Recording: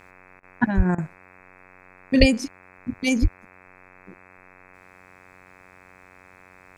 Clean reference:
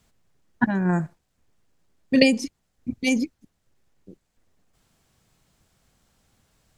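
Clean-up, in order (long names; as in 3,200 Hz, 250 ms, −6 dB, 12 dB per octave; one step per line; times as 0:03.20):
hum removal 92.3 Hz, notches 28
high-pass at the plosives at 0:00.76/0:02.19/0:03.21
repair the gap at 0:00.40/0:00.95, 30 ms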